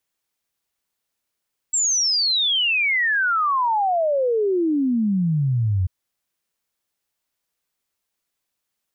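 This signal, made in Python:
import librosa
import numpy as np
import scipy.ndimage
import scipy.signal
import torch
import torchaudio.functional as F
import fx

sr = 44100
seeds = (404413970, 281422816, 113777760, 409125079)

y = fx.ess(sr, length_s=4.14, from_hz=7700.0, to_hz=88.0, level_db=-17.0)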